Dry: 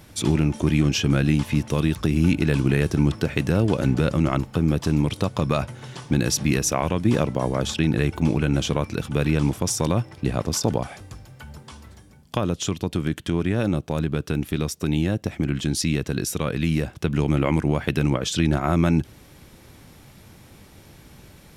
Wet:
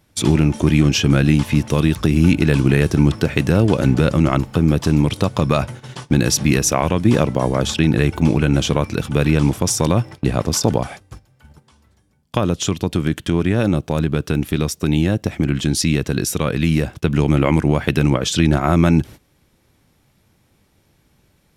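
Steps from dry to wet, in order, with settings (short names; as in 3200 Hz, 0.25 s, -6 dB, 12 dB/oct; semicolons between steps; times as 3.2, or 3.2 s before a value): gate -37 dBFS, range -17 dB; gain +5.5 dB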